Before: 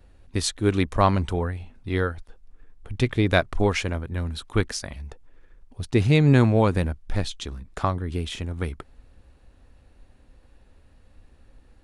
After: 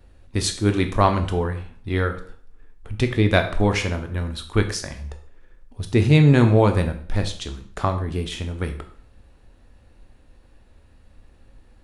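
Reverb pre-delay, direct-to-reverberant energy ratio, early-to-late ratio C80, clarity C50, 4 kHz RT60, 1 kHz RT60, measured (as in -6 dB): 6 ms, 6.0 dB, 14.5 dB, 11.0 dB, 0.50 s, 0.50 s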